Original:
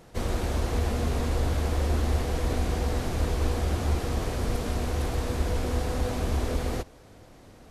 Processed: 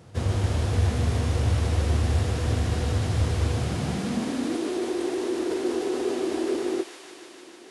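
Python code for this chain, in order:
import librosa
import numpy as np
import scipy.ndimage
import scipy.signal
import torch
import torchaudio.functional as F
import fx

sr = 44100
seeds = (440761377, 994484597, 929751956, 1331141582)

y = fx.filter_sweep_highpass(x, sr, from_hz=98.0, to_hz=380.0, start_s=3.47, end_s=4.69, q=4.9)
y = fx.formant_shift(y, sr, semitones=-3)
y = fx.echo_wet_highpass(y, sr, ms=151, feedback_pct=82, hz=1500.0, wet_db=-5.0)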